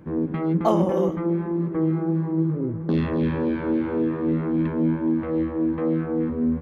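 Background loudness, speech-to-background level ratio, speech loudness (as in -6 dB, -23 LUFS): -24.0 LUFS, -1.5 dB, -25.5 LUFS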